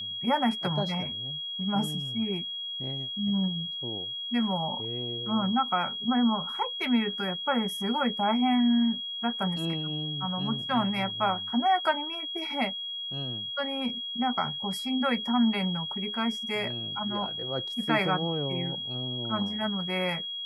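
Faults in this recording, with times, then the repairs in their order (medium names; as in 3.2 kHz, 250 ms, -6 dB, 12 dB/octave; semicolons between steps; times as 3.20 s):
whine 3.3 kHz -33 dBFS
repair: band-stop 3.3 kHz, Q 30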